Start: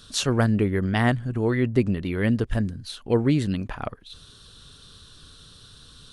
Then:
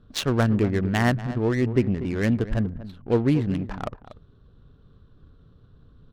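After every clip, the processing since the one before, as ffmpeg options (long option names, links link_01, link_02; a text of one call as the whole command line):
ffmpeg -i in.wav -filter_complex "[0:a]asplit=2[link_01][link_02];[link_02]adelay=239.1,volume=-13dB,highshelf=frequency=4000:gain=-5.38[link_03];[link_01][link_03]amix=inputs=2:normalize=0,adynamicsmooth=sensitivity=3.5:basefreq=640" out.wav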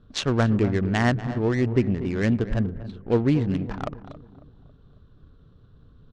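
ffmpeg -i in.wav -filter_complex "[0:a]lowpass=frequency=7900:width=0.5412,lowpass=frequency=7900:width=1.3066,asplit=2[link_01][link_02];[link_02]adelay=274,lowpass=frequency=1200:poles=1,volume=-16dB,asplit=2[link_03][link_04];[link_04]adelay=274,lowpass=frequency=1200:poles=1,volume=0.49,asplit=2[link_05][link_06];[link_06]adelay=274,lowpass=frequency=1200:poles=1,volume=0.49,asplit=2[link_07][link_08];[link_08]adelay=274,lowpass=frequency=1200:poles=1,volume=0.49[link_09];[link_01][link_03][link_05][link_07][link_09]amix=inputs=5:normalize=0" out.wav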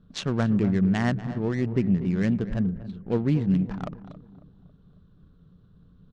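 ffmpeg -i in.wav -af "equalizer=frequency=180:width_type=o:width=0.41:gain=13.5,volume=-5.5dB" out.wav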